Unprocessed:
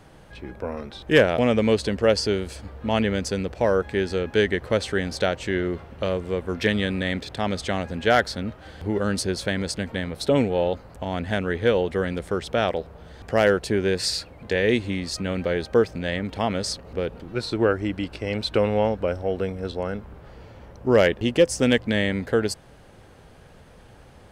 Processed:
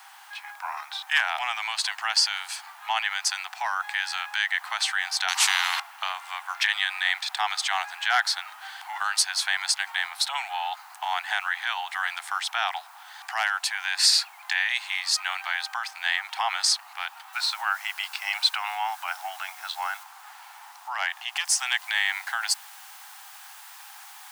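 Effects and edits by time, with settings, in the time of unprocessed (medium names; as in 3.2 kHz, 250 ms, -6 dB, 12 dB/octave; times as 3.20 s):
5.28–5.80 s: spectrum-flattening compressor 4:1
17.33 s: noise floor step -65 dB -55 dB
20.03–21.37 s: tilt EQ -2 dB/octave
whole clip: peak limiter -15 dBFS; steep high-pass 760 Hz 96 dB/octave; trim +7.5 dB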